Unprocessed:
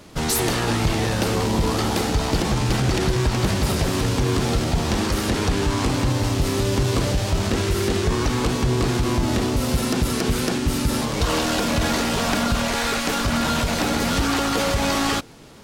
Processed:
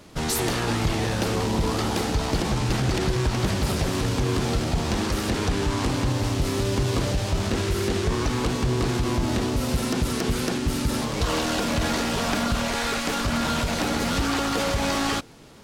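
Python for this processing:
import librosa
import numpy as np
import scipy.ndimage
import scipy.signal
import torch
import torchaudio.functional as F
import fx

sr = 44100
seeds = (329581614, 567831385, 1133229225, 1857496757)

y = fx.doppler_dist(x, sr, depth_ms=0.15)
y = y * 10.0 ** (-3.0 / 20.0)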